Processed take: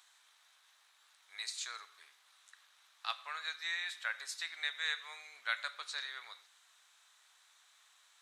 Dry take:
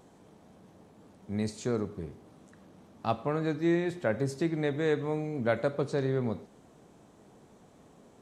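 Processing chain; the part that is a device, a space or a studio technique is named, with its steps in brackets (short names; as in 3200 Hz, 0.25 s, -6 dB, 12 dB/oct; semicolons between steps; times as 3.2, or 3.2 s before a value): headphones lying on a table (HPF 1400 Hz 24 dB/oct; bell 3800 Hz +8 dB 0.3 oct); gain +2.5 dB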